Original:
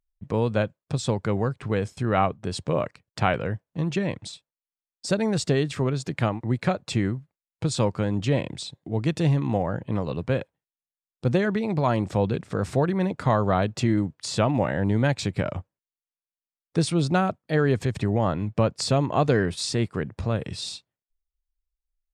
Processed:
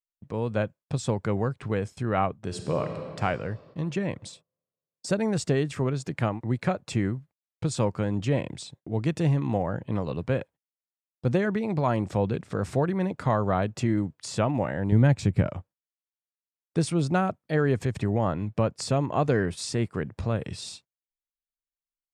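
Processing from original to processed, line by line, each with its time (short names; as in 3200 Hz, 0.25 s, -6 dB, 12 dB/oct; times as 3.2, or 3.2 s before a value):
2.38–3.19 reverb throw, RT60 2.7 s, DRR 4 dB
14.92–15.47 low shelf 260 Hz +11 dB
whole clip: gate -46 dBFS, range -23 dB; dynamic EQ 3900 Hz, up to -6 dB, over -47 dBFS, Q 1.8; AGC gain up to 6.5 dB; gain -8 dB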